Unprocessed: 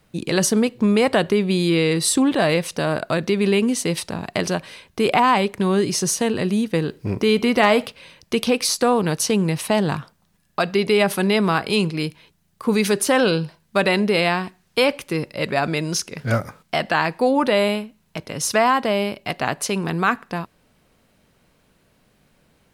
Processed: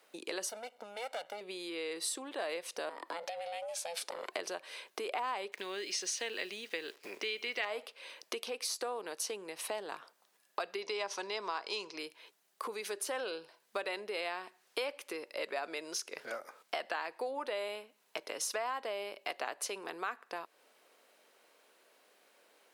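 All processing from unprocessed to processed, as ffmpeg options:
-filter_complex "[0:a]asettb=1/sr,asplit=3[s0][s1][s2];[s0]atrim=end=0.494[s3];[s1]atrim=start=0.49:end=1.41,asetpts=PTS-STARTPTS,afade=t=in:d=0.004:c=qsin,afade=t=out:st=0.916:d=0.004:c=qsin,aeval=exprs='max(val(0),0)':c=same,aecho=1:1:1.4:0.83,atrim=end_sample=40572[s4];[s2]atrim=start=1.406[s5];[s3][s4]acrossfade=d=0.004:c1=hsin:c2=qsin[s6];[s6][s5]acrossfade=d=0.004:c1=qsin:c2=hsin,asettb=1/sr,asplit=3[s7][s8][s9];[s7]atrim=end=2.894[s10];[s8]atrim=start=2.89:end=4.32,asetpts=PTS-STARTPTS,afade=t=in:d=0.004:c=qsin,afade=t=out:st=1.426:d=0.004:c=qsin,acompressor=threshold=0.0708:ratio=5:attack=3.2:release=140:knee=1:detection=peak,aeval=exprs='val(0)*sin(2*PI*340*n/s)':c=same,asoftclip=type=hard:threshold=0.133[s11];[s9]atrim=start=4.316[s12];[s10][s11]acrossfade=d=0.004:c1=hsin:c2=qsin[s13];[s13][s12]acrossfade=d=0.004:c1=qsin:c2=hsin,asettb=1/sr,asplit=3[s14][s15][s16];[s14]atrim=end=5.524[s17];[s15]atrim=start=5.52:end=7.65,asetpts=PTS-STARTPTS,afade=t=in:d=0.004:c=qsin,afade=t=out:st=2.126:d=0.004:c=qsin,lowpass=5600,highshelf=f=1500:t=q:w=1.5:g=8.5,acrusher=bits=8:dc=4:mix=0:aa=0.000001[s18];[s16]atrim=start=7.646[s19];[s17][s18]acrossfade=d=0.004:c1=hsin:c2=qsin[s20];[s20][s19]acrossfade=d=0.004:c1=qsin:c2=hsin,asettb=1/sr,asplit=3[s21][s22][s23];[s21]atrim=end=10.824[s24];[s22]atrim=start=10.82:end=11.98,asetpts=PTS-STARTPTS,afade=t=in:d=0.004:c=qsin,afade=t=out:st=1.156:d=0.004:c=qsin,lowpass=f=5900:t=q:w=5.9,equalizer=f=990:w=4.8:g=9.5[s25];[s23]atrim=start=11.976[s26];[s24][s25]acrossfade=d=0.004:c1=hsin:c2=qsin[s27];[s27][s26]acrossfade=d=0.004:c1=qsin:c2=hsin,acompressor=threshold=0.0251:ratio=6,highpass=f=390:w=0.5412,highpass=f=390:w=1.3066,volume=0.75"

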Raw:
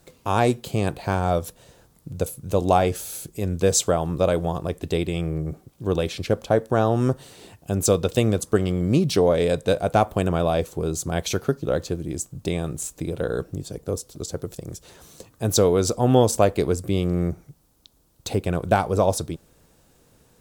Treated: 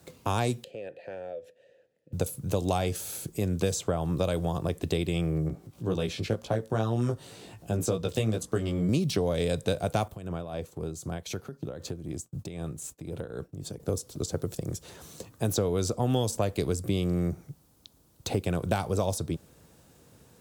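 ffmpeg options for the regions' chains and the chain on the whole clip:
-filter_complex "[0:a]asettb=1/sr,asplit=3[s0][s1][s2];[s0]atrim=end=0.644[s3];[s1]atrim=start=0.64:end=2.13,asetpts=PTS-STARTPTS,afade=t=in:d=0.004:c=qsin,afade=t=out:st=1.486:d=0.004:c=qsin,asplit=3[s4][s5][s6];[s4]bandpass=f=530:t=q:w=8,volume=1[s7];[s5]bandpass=f=1840:t=q:w=8,volume=0.501[s8];[s6]bandpass=f=2480:t=q:w=8,volume=0.355[s9];[s7][s8][s9]amix=inputs=3:normalize=0,acompressor=threshold=0.0178:ratio=5:attack=3.2:release=140:knee=1:detection=peak[s10];[s2]atrim=start=2.126[s11];[s3][s10]acrossfade=d=0.004:c1=hsin:c2=qsin[s12];[s12][s11]acrossfade=d=0.004:c1=qsin:c2=hsin,asettb=1/sr,asplit=3[s13][s14][s15];[s13]atrim=end=5.484[s16];[s14]atrim=start=5.48:end=8.89,asetpts=PTS-STARTPTS,afade=t=in:d=0.004:c=qsin,afade=t=out:st=3.406:d=0.004:c=qsin,highshelf=f=9000:g=-4,acompressor=mode=upward:threshold=0.0112:ratio=2.5:attack=3.2:release=140:knee=2.83:detection=peak,flanger=delay=16.5:depth=2.2:speed=2[s17];[s15]atrim=start=8.886[s18];[s16][s17]acrossfade=d=0.004:c1=hsin:c2=qsin[s19];[s19][s18]acrossfade=d=0.004:c1=qsin:c2=hsin,asettb=1/sr,asplit=3[s20][s21][s22];[s20]atrim=end=10.084[s23];[s21]atrim=start=10.08:end=13.8,asetpts=PTS-STARTPTS,afade=t=in:d=0.004:c=qsin,afade=t=out:st=3.716:d=0.004:c=qsin,acompressor=threshold=0.0251:ratio=4:attack=3.2:release=140:knee=1:detection=peak,agate=range=0.0224:threshold=0.00891:ratio=3:release=100:detection=peak,tremolo=f=3.9:d=0.55[s24];[s22]atrim=start=13.796[s25];[s23][s24]acrossfade=d=0.004:c1=hsin:c2=qsin[s26];[s26][s25]acrossfade=d=0.004:c1=qsin:c2=hsin,highpass=79,lowshelf=f=160:g=5.5,acrossover=split=150|2800[s27][s28][s29];[s27]acompressor=threshold=0.0251:ratio=4[s30];[s28]acompressor=threshold=0.0447:ratio=4[s31];[s29]acompressor=threshold=0.0178:ratio=4[s32];[s30][s31][s32]amix=inputs=3:normalize=0"

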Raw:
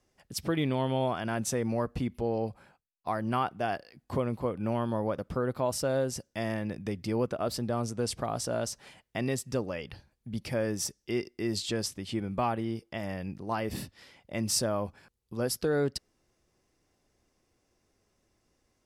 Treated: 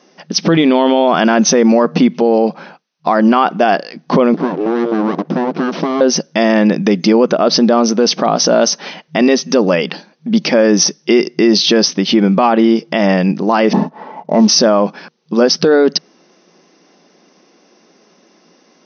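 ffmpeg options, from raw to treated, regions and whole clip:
-filter_complex "[0:a]asettb=1/sr,asplit=3[s0][s1][s2];[s0]atrim=end=4.344[s3];[s1]atrim=start=4.34:end=6.01,asetpts=PTS-STARTPTS,afade=t=in:d=0.004:c=qsin,afade=t=out:st=1.666:d=0.004:c=qsin,aeval=exprs='abs(val(0))':c=same,acompressor=threshold=0.0178:ratio=3:attack=3.2:release=140:knee=1:detection=peak,tiltshelf=f=670:g=7.5[s4];[s2]atrim=start=6.006[s5];[s3][s4]acrossfade=d=0.004:c1=hsin:c2=qsin[s6];[s6][s5]acrossfade=d=0.004:c1=qsin:c2=hsin,asettb=1/sr,asplit=3[s7][s8][s9];[s7]atrim=end=13.734[s10];[s8]atrim=start=13.73:end=14.48,asetpts=PTS-STARTPTS,afade=t=in:d=0.004:c=qsin,afade=t=out:st=0.746:d=0.004:c=qsin,lowpass=f=900:t=q:w=4.3,aecho=1:1:4.6:0.42,atrim=end_sample=33075,acrusher=bits=8:mode=log:mix=0:aa=0.000001[s11];[s9]atrim=start=14.476[s12];[s10][s11]acrossfade=d=0.004:c1=hsin:c2=qsin[s13];[s13][s12]acrossfade=d=0.004:c1=qsin:c2=hsin,afftfilt=real='re*between(b*sr/4096,160,6300)':imag='im*between(b*sr/4096,160,6300)':win_size=4096:overlap=0.75,equalizer=f=2000:t=o:w=0.77:g=-2,alimiter=level_in=20:limit=0.891:release=50:level=0:latency=1,volume=0.891"

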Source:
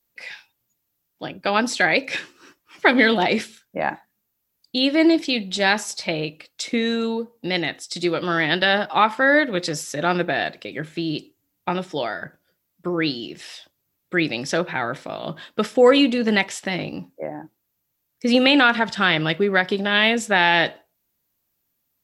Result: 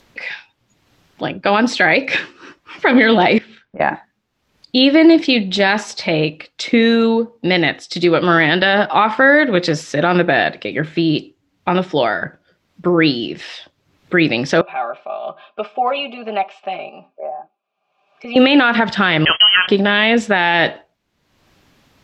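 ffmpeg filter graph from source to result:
-filter_complex "[0:a]asettb=1/sr,asplit=3[s0][s1][s2];[s0]atrim=end=3.384[s3];[s1]atrim=start=3.38:end=3.8,asetpts=PTS-STARTPTS,afade=t=in:d=0.004:c=qsin,afade=t=out:st=0.416:d=0.004:c=qsin,lowpass=3100,acompressor=threshold=0.00562:ratio=4:attack=3.2:release=140:knee=1:detection=peak[s4];[s2]atrim=start=3.796[s5];[s3][s4]acrossfade=d=0.004:c1=hsin:c2=qsin[s6];[s6][s5]acrossfade=d=0.004:c1=qsin:c2=hsin,asettb=1/sr,asplit=3[s7][s8][s9];[s7]atrim=end=14.614[s10];[s8]atrim=start=14.61:end=18.36,asetpts=PTS-STARTPTS,afade=t=in:d=0.004:c=qsin,afade=t=out:st=3.746:d=0.004:c=qsin,asplit=3[s11][s12][s13];[s11]bandpass=f=730:t=q:w=8,volume=1[s14];[s12]bandpass=f=1090:t=q:w=8,volume=0.501[s15];[s13]bandpass=f=2440:t=q:w=8,volume=0.355[s16];[s14][s15][s16]amix=inputs=3:normalize=0,lowshelf=f=140:g=-9,aecho=1:1:5:0.99,atrim=end_sample=165375[s17];[s9]atrim=start=18.356[s18];[s10][s17]acrossfade=d=0.004:c1=hsin:c2=qsin[s19];[s19][s18]acrossfade=d=0.004:c1=qsin:c2=hsin,asettb=1/sr,asplit=3[s20][s21][s22];[s20]atrim=end=19.254[s23];[s21]atrim=start=19.25:end=19.68,asetpts=PTS-STARTPTS,afade=t=in:d=0.004:c=qsin,afade=t=out:st=0.426:d=0.004:c=qsin,aeval=exprs='val(0)+0.5*0.0299*sgn(val(0))':c=same,agate=range=0.0631:threshold=0.0447:ratio=16:release=100:detection=peak,lowpass=f=2800:t=q:w=0.5098,lowpass=f=2800:t=q:w=0.6013,lowpass=f=2800:t=q:w=0.9,lowpass=f=2800:t=q:w=2.563,afreqshift=-3300[s24];[s22]atrim=start=19.676[s25];[s23][s24]acrossfade=d=0.004:c1=hsin:c2=qsin[s26];[s26][s25]acrossfade=d=0.004:c1=qsin:c2=hsin,acompressor=mode=upward:threshold=0.0112:ratio=2.5,lowpass=3700,alimiter=level_in=3.55:limit=0.891:release=50:level=0:latency=1,volume=0.891"

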